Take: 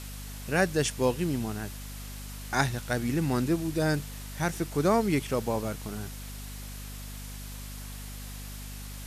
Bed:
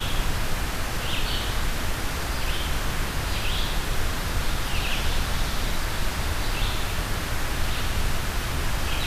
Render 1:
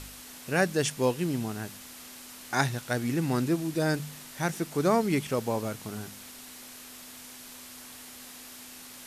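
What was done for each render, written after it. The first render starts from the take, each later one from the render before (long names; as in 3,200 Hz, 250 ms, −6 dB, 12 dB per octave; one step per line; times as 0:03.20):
hum removal 50 Hz, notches 4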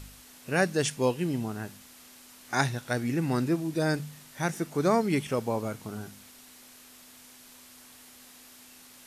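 noise reduction from a noise print 6 dB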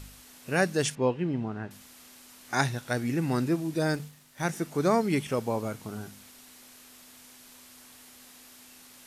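0:00.95–0:01.71: low-pass filter 2,400 Hz
0:03.87–0:04.45: mu-law and A-law mismatch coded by A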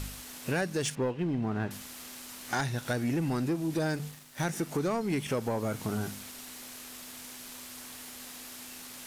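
downward compressor 6 to 1, threshold −33 dBFS, peak gain reduction 13 dB
leveller curve on the samples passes 2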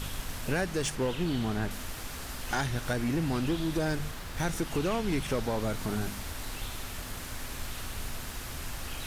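mix in bed −13 dB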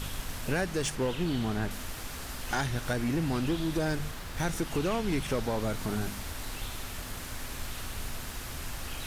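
no processing that can be heard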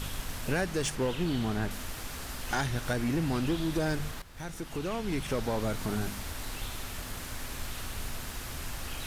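0:04.22–0:05.53: fade in, from −13.5 dB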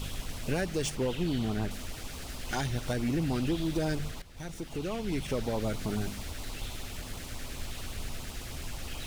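running median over 3 samples
auto-filter notch sine 9.4 Hz 900–1,800 Hz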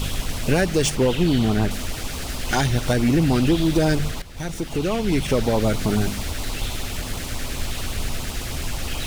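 level +11.5 dB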